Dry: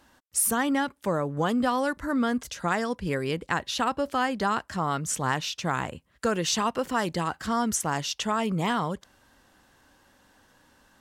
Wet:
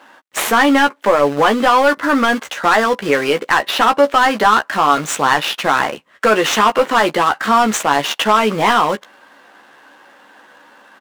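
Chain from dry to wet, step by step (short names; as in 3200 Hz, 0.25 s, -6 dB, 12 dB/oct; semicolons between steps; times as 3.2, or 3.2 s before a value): median filter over 9 samples; HPF 210 Hz 12 dB/oct; in parallel at -11 dB: requantised 6-bit, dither none; on the sum: overdrive pedal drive 19 dB, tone 5200 Hz, clips at -7.5 dBFS; doubler 14 ms -6.5 dB; gain +5 dB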